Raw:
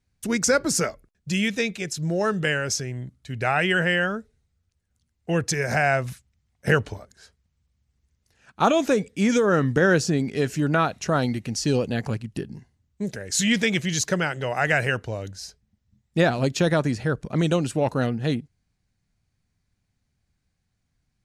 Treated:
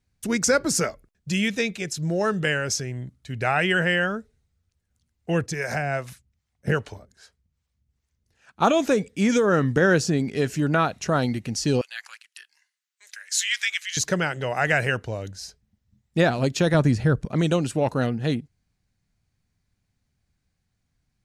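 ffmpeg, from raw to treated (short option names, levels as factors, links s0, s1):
-filter_complex "[0:a]asettb=1/sr,asplit=3[s0][s1][s2];[s0]atrim=end=5.464[s3];[s1]atrim=start=5.46:end=8.62,asetpts=PTS-STARTPTS,afade=t=in:d=0.004:c=qsin,afade=t=out:st=3.156:d=0.004:c=qsin,acrossover=split=460[s4][s5];[s4]aeval=exprs='val(0)*(1-0.7/2+0.7/2*cos(2*PI*2.5*n/s))':c=same[s6];[s5]aeval=exprs='val(0)*(1-0.7/2-0.7/2*cos(2*PI*2.5*n/s))':c=same[s7];[s6][s7]amix=inputs=2:normalize=0[s8];[s2]atrim=start=8.616[s9];[s3][s8]acrossfade=d=0.004:c1=hsin:c2=qsin[s10];[s10][s9]acrossfade=d=0.004:c1=qsin:c2=hsin,asettb=1/sr,asplit=3[s11][s12][s13];[s11]atrim=end=11.814[s14];[s12]atrim=start=11.81:end=13.97,asetpts=PTS-STARTPTS,afade=t=in:d=0.004:c=qsin,afade=t=out:st=2.156:d=0.004:c=qsin,highpass=f=1400:w=0.5412,highpass=f=1400:w=1.3066[s15];[s13]atrim=start=13.966[s16];[s14][s15]acrossfade=d=0.004:c1=hsin:c2=qsin[s17];[s17][s16]acrossfade=d=0.004:c1=qsin:c2=hsin,asettb=1/sr,asplit=3[s18][s19][s20];[s18]atrim=end=16.744[s21];[s19]atrim=start=16.74:end=17.25,asetpts=PTS-STARTPTS,afade=t=in:d=0.004:c=qsin,afade=t=out:st=0.506:d=0.004:c=qsin,lowshelf=f=190:g=10[s22];[s20]atrim=start=17.246[s23];[s21][s22]acrossfade=d=0.004:c1=hsin:c2=qsin[s24];[s24][s23]acrossfade=d=0.004:c1=qsin:c2=hsin"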